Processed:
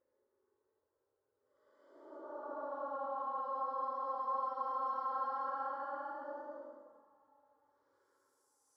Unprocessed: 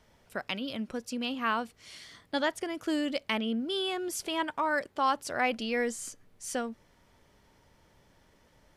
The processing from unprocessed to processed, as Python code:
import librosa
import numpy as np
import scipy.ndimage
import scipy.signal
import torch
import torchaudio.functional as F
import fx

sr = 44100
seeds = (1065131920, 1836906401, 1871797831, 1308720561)

y = fx.filter_sweep_bandpass(x, sr, from_hz=270.0, to_hz=2200.0, start_s=4.11, end_s=6.3, q=1.9)
y = fx.fixed_phaser(y, sr, hz=720.0, stages=6)
y = fx.paulstretch(y, sr, seeds[0], factor=25.0, window_s=0.05, from_s=4.89)
y = y * librosa.db_to_amplitude(-5.0)